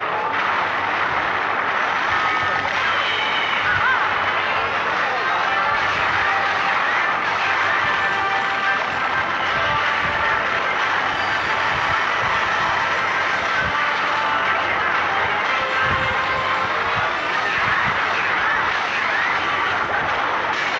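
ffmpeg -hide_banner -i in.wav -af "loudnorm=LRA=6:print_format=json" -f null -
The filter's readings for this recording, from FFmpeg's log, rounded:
"input_i" : "-18.8",
"input_tp" : "-7.8",
"input_lra" : "0.8",
"input_thresh" : "-28.8",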